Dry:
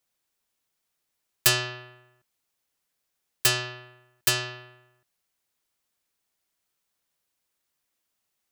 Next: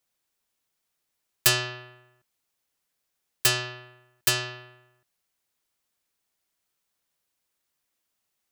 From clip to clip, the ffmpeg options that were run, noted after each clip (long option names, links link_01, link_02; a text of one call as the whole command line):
ffmpeg -i in.wav -af anull out.wav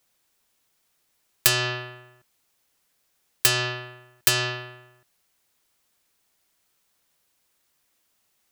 ffmpeg -i in.wav -af "acompressor=threshold=-25dB:ratio=6,volume=9dB" out.wav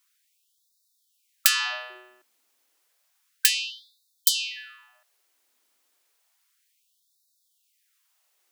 ffmpeg -i in.wav -af "afftfilt=real='re*gte(b*sr/1024,200*pow(3600/200,0.5+0.5*sin(2*PI*0.31*pts/sr)))':imag='im*gte(b*sr/1024,200*pow(3600/200,0.5+0.5*sin(2*PI*0.31*pts/sr)))':win_size=1024:overlap=0.75" out.wav